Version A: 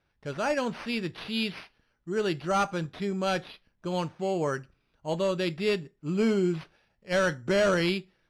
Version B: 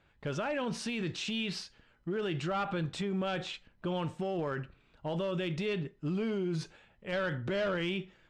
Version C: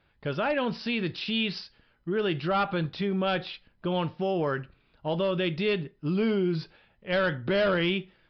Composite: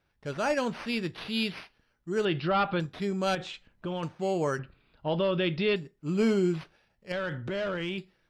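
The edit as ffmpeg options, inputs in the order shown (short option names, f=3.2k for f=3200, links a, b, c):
-filter_complex "[2:a]asplit=2[a][b];[1:a]asplit=2[c][d];[0:a]asplit=5[e][f][g][h][i];[e]atrim=end=2.252[j];[a]atrim=start=2.248:end=2.802[k];[f]atrim=start=2.798:end=3.352[l];[c]atrim=start=3.348:end=4.032[m];[g]atrim=start=4.028:end=4.592[n];[b]atrim=start=4.588:end=5.762[o];[h]atrim=start=5.758:end=7.122[p];[d]atrim=start=7.118:end=7.982[q];[i]atrim=start=7.978[r];[j][k]acrossfade=d=0.004:c1=hsin:c2=hsin[s];[s][l]acrossfade=d=0.004:c1=hsin:c2=hsin[t];[t][m]acrossfade=d=0.004:c1=hsin:c2=hsin[u];[u][n]acrossfade=d=0.004:c1=hsin:c2=hsin[v];[v][o]acrossfade=d=0.004:c1=hsin:c2=hsin[w];[w][p]acrossfade=d=0.004:c1=hsin:c2=hsin[x];[x][q]acrossfade=d=0.004:c1=hsin:c2=hsin[y];[y][r]acrossfade=d=0.004:c1=hsin:c2=hsin"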